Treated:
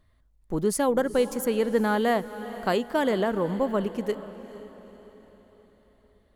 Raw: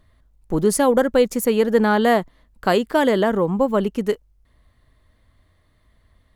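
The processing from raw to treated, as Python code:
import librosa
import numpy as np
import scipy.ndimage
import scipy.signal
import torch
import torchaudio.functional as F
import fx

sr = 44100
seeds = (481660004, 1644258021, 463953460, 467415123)

y = fx.echo_diffused(x, sr, ms=459, feedback_pct=47, wet_db=-14)
y = y * 10.0 ** (-7.0 / 20.0)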